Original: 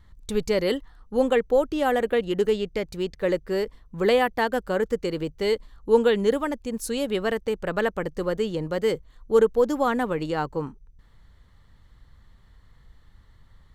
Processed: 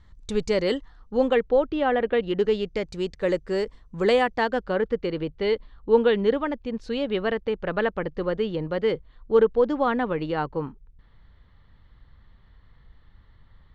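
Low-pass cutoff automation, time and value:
low-pass 24 dB/octave
0.71 s 7.6 kHz
1.95 s 3.3 kHz
2.99 s 8.1 kHz
4.16 s 8.1 kHz
4.81 s 4 kHz

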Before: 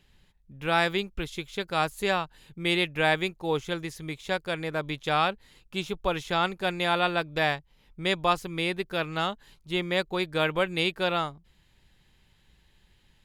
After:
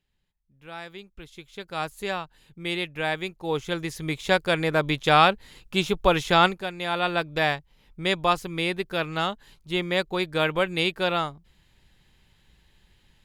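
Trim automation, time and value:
0.86 s -15 dB
1.84 s -3.5 dB
3.17 s -3.5 dB
4.18 s +7.5 dB
6.46 s +7.5 dB
6.70 s -5.5 dB
7.16 s +2 dB

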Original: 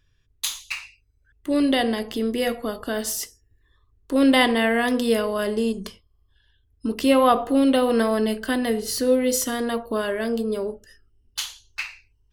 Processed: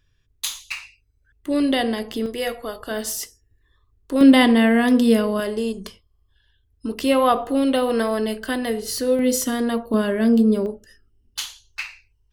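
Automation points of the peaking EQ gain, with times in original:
peaking EQ 220 Hz 1.1 oct
+0.5 dB
from 2.26 s -8.5 dB
from 2.91 s -0.5 dB
from 4.21 s +8.5 dB
from 5.40 s -2 dB
from 9.19 s +5.5 dB
from 9.94 s +12 dB
from 10.66 s +4.5 dB
from 11.45 s -7 dB

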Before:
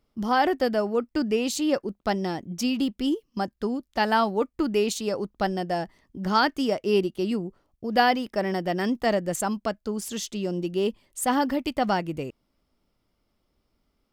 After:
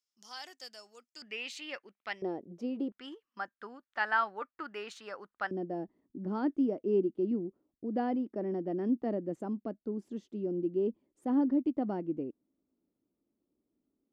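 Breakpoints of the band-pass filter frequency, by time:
band-pass filter, Q 2.7
6.6 kHz
from 1.22 s 2.2 kHz
from 2.22 s 440 Hz
from 2.92 s 1.5 kHz
from 5.51 s 300 Hz

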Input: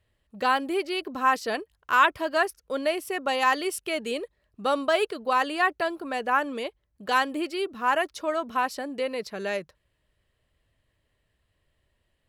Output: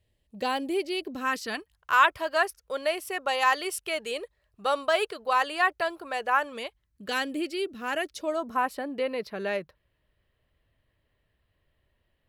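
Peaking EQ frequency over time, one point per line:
peaking EQ -12.5 dB 0.95 oct
1.03 s 1.3 kHz
1.98 s 250 Hz
6.46 s 250 Hz
7.16 s 1 kHz
8.13 s 1 kHz
8.83 s 7.4 kHz

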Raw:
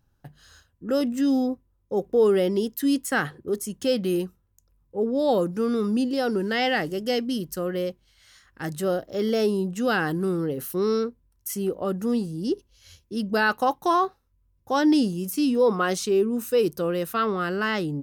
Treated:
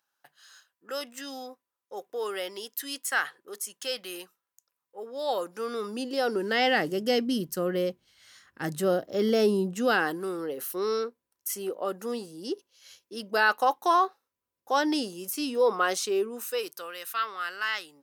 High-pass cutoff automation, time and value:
5.08 s 990 Hz
6.35 s 360 Hz
7.02 s 150 Hz
9.53 s 150 Hz
10.24 s 490 Hz
16.21 s 490 Hz
16.92 s 1.4 kHz

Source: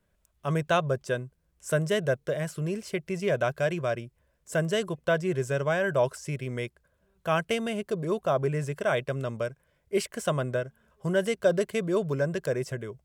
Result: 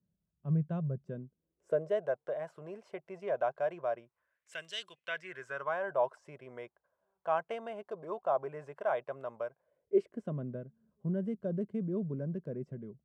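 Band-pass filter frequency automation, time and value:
band-pass filter, Q 2.5
1.05 s 170 Hz
2.07 s 790 Hz
3.97 s 790 Hz
4.74 s 3.8 kHz
5.86 s 830 Hz
9.48 s 830 Hz
10.34 s 210 Hz

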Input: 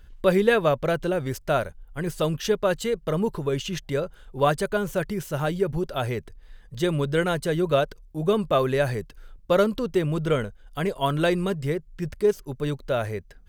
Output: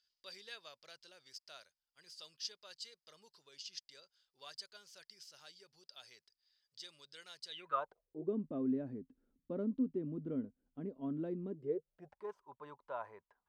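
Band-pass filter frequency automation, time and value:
band-pass filter, Q 9.1
7.46 s 4.9 kHz
7.77 s 1.1 kHz
8.36 s 260 Hz
11.45 s 260 Hz
12.23 s 970 Hz

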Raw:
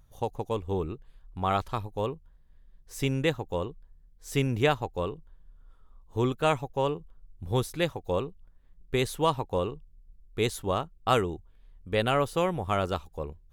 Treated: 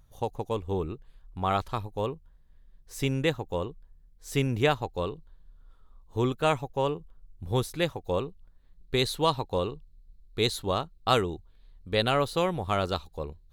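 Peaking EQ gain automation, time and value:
peaking EQ 4.1 kHz 0.32 oct
4.66 s +2.5 dB
5.12 s +12.5 dB
6.42 s +3 dB
7.94 s +3 dB
9.00 s +13 dB

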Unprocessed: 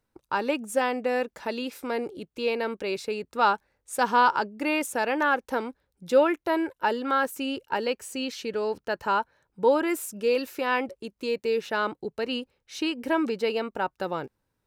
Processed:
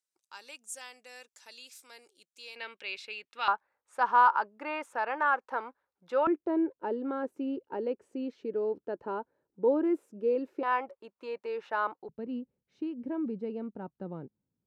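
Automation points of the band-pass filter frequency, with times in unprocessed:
band-pass filter, Q 1.7
7.2 kHz
from 2.56 s 2.8 kHz
from 3.48 s 1.1 kHz
from 6.27 s 340 Hz
from 10.63 s 970 Hz
from 12.09 s 190 Hz

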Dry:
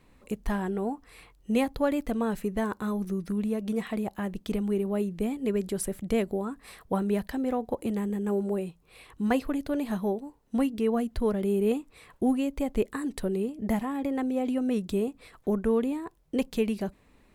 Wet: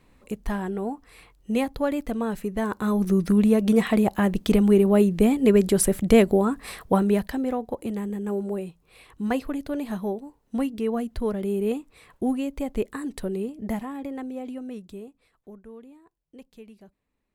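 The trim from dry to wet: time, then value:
2.53 s +1 dB
3.17 s +10.5 dB
6.65 s +10.5 dB
7.70 s 0 dB
13.51 s 0 dB
14.55 s -7 dB
15.63 s -19 dB

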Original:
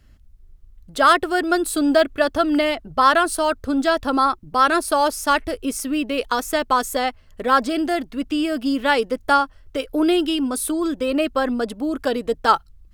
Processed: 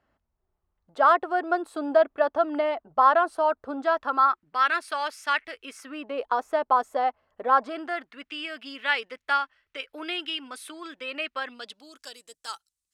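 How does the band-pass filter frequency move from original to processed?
band-pass filter, Q 1.7
3.73 s 830 Hz
4.64 s 2.1 kHz
5.66 s 2.1 kHz
6.17 s 800 Hz
7.47 s 800 Hz
8.32 s 2.2 kHz
11.37 s 2.2 kHz
12.19 s 8 kHz

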